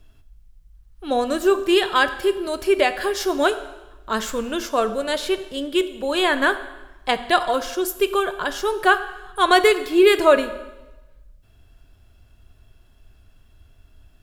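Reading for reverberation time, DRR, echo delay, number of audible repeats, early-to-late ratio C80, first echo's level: 1.1 s, 10.5 dB, no echo, no echo, 14.5 dB, no echo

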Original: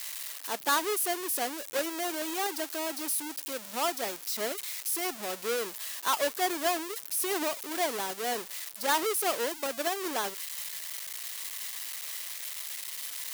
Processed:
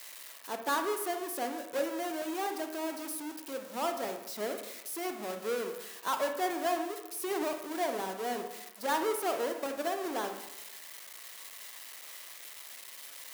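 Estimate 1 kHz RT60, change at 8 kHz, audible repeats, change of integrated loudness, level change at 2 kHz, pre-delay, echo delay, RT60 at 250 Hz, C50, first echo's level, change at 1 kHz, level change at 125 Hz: 1.0 s, -9.5 dB, no echo, -4.5 dB, -5.0 dB, 30 ms, no echo, 0.85 s, 7.5 dB, no echo, -2.0 dB, no reading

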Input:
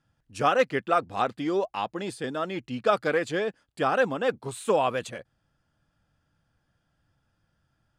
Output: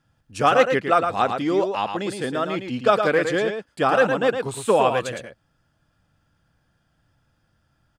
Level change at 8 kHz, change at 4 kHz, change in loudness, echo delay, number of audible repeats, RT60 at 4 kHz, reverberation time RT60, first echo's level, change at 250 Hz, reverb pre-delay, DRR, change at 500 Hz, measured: +6.0 dB, +6.0 dB, +6.0 dB, 112 ms, 1, no reverb, no reverb, -6.5 dB, +6.0 dB, no reverb, no reverb, +6.0 dB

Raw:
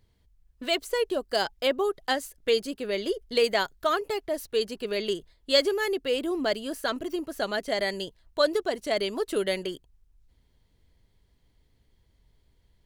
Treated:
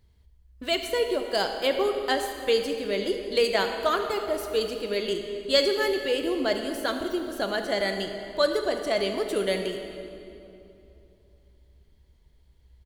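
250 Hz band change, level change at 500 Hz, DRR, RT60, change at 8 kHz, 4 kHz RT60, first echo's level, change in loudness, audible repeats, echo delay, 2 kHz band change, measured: +1.5 dB, +1.5 dB, 4.5 dB, 2.8 s, +1.0 dB, 2.1 s, -16.0 dB, +1.5 dB, 1, 77 ms, +1.0 dB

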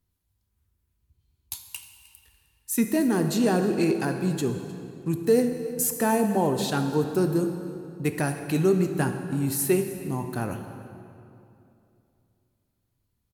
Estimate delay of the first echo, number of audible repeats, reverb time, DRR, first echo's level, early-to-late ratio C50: 308 ms, 1, 2.7 s, 6.0 dB, -20.0 dB, 7.0 dB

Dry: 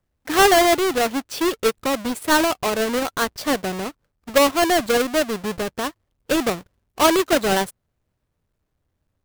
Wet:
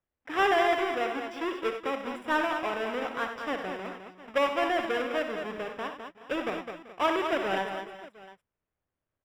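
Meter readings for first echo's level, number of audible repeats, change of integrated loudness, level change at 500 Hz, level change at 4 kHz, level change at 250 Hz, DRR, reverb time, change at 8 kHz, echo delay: -9.5 dB, 6, -10.0 dB, -9.5 dB, -13.0 dB, -12.0 dB, no reverb, no reverb, -25.5 dB, 62 ms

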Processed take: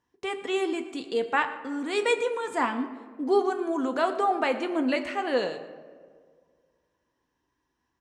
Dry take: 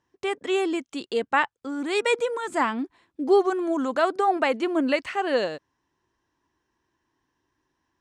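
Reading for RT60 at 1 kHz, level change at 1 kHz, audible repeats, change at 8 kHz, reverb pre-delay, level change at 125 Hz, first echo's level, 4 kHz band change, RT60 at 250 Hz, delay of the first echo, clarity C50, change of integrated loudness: 1.5 s, -2.5 dB, 1, -2.5 dB, 4 ms, no reading, -19.5 dB, -2.5 dB, 2.0 s, 117 ms, 11.0 dB, -2.5 dB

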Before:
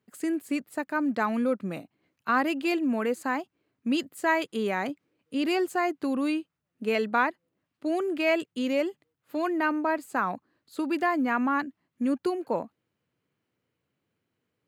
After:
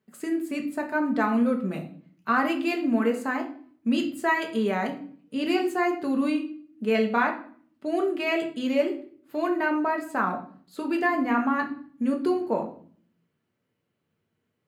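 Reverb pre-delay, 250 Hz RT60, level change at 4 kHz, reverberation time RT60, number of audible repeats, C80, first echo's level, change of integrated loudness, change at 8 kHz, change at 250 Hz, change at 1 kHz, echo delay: 5 ms, 0.80 s, +1.0 dB, 0.50 s, no echo, 14.5 dB, no echo, +2.0 dB, no reading, +2.5 dB, +1.5 dB, no echo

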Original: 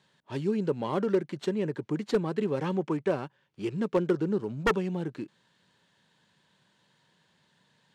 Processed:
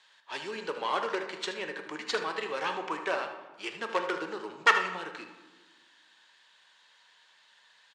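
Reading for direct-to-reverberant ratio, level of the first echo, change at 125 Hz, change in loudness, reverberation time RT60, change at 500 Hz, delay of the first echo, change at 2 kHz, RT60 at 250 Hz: 4.5 dB, -11.0 dB, -22.0 dB, -2.0 dB, 1.3 s, -6.0 dB, 77 ms, +9.0 dB, 1.7 s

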